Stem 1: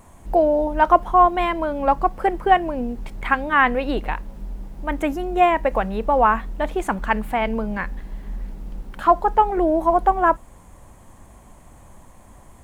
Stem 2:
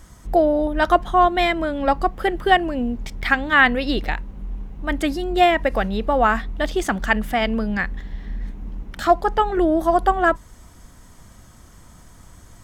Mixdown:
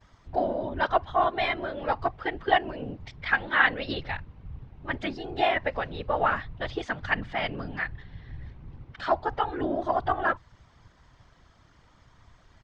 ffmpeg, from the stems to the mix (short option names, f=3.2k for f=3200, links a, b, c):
-filter_complex "[0:a]volume=-15dB[a];[1:a]volume=-1,adelay=11,volume=-0.5dB[b];[a][b]amix=inputs=2:normalize=0,lowpass=f=4.7k:w=0.5412,lowpass=f=4.7k:w=1.3066,equalizer=f=120:t=o:w=3:g=-11,afftfilt=real='hypot(re,im)*cos(2*PI*random(0))':imag='hypot(re,im)*sin(2*PI*random(1))':win_size=512:overlap=0.75"